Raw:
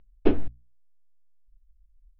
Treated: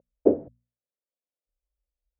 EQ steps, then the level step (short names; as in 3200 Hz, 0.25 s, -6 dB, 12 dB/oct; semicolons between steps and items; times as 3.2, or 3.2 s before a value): HPF 150 Hz 12 dB/oct; synth low-pass 550 Hz, resonance Q 4.9; -1.5 dB